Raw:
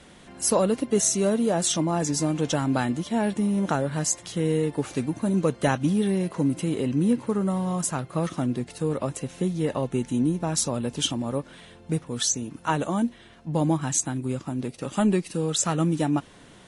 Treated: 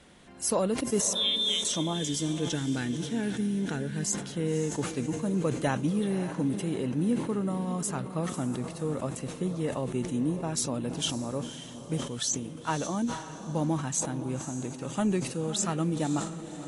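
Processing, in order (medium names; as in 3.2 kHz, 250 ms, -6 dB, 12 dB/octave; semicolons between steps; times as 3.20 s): 1.13–1.65 s: frequency inversion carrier 3.8 kHz; 1.93–4.03 s: time-frequency box 500–1400 Hz -11 dB; on a send: echo that smears into a reverb 545 ms, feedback 43%, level -11.5 dB; on the sum: decay stretcher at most 84 dB/s; trim -5.5 dB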